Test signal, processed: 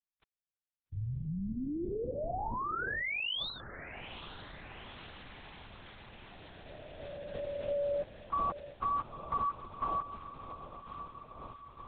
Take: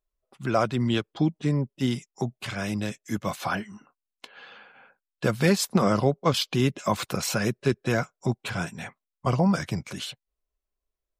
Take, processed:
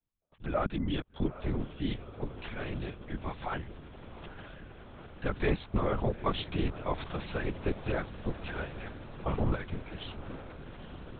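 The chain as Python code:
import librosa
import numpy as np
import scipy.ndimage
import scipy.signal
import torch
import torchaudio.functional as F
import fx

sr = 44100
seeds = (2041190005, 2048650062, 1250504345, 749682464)

p1 = x + fx.echo_diffused(x, sr, ms=875, feedback_pct=75, wet_db=-13, dry=0)
p2 = fx.lpc_vocoder(p1, sr, seeds[0], excitation='whisper', order=8)
y = p2 * 10.0 ** (-7.5 / 20.0)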